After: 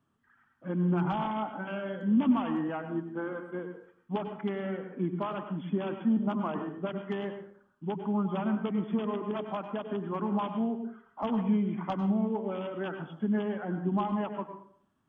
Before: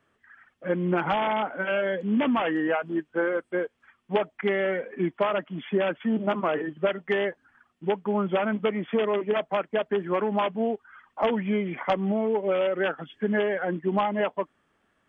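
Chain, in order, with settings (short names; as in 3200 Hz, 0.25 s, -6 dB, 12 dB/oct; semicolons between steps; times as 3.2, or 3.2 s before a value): ten-band EQ 125 Hz +7 dB, 250 Hz +7 dB, 500 Hz -9 dB, 1000 Hz +5 dB, 2000 Hz -11 dB; plate-style reverb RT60 0.57 s, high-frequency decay 0.6×, pre-delay 85 ms, DRR 6.5 dB; gain -7 dB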